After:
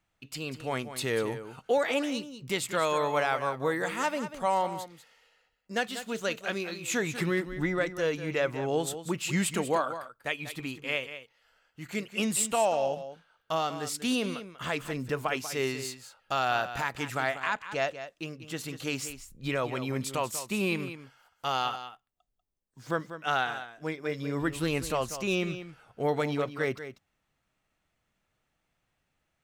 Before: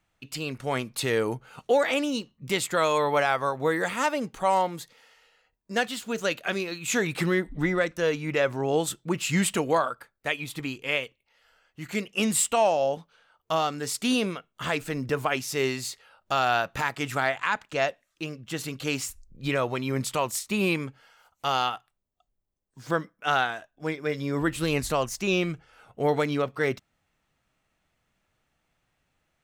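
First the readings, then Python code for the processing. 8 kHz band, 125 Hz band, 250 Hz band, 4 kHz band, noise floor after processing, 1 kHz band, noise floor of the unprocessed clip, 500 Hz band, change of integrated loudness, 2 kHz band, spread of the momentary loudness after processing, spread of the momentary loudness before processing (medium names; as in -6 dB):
-3.5 dB, -3.5 dB, -3.5 dB, -3.5 dB, -79 dBFS, -3.5 dB, -77 dBFS, -3.5 dB, -4.0 dB, -3.5 dB, 11 LU, 10 LU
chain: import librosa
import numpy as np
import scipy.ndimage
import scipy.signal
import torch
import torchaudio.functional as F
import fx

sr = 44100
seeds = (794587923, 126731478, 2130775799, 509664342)

y = x + 10.0 ** (-11.5 / 20.0) * np.pad(x, (int(192 * sr / 1000.0), 0))[:len(x)]
y = y * 10.0 ** (-4.0 / 20.0)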